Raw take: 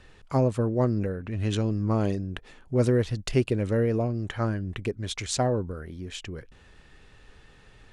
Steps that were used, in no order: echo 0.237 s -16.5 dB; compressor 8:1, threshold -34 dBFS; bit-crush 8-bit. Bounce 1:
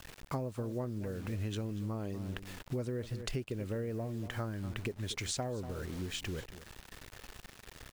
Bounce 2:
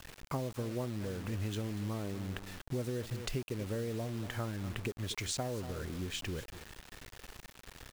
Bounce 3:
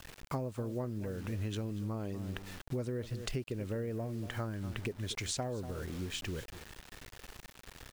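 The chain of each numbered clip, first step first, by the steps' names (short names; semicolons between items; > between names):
bit-crush > echo > compressor; echo > compressor > bit-crush; echo > bit-crush > compressor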